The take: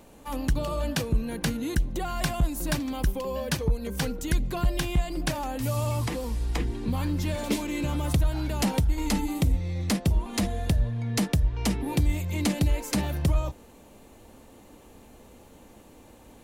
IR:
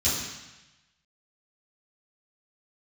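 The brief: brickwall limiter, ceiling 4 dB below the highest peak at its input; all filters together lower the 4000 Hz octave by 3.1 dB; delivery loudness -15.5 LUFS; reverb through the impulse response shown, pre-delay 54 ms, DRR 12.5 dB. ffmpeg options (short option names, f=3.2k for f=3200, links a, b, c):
-filter_complex "[0:a]equalizer=f=4k:t=o:g=-4,alimiter=limit=-18dB:level=0:latency=1,asplit=2[a][b];[1:a]atrim=start_sample=2205,adelay=54[c];[b][c]afir=irnorm=-1:irlink=0,volume=-23.5dB[d];[a][d]amix=inputs=2:normalize=0,volume=12.5dB"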